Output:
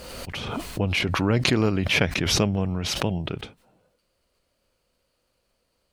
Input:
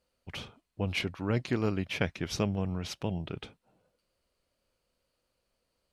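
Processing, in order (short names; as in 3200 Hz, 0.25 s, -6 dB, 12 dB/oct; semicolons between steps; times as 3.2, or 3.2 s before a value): backwards sustainer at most 28 dB/s; gain +6.5 dB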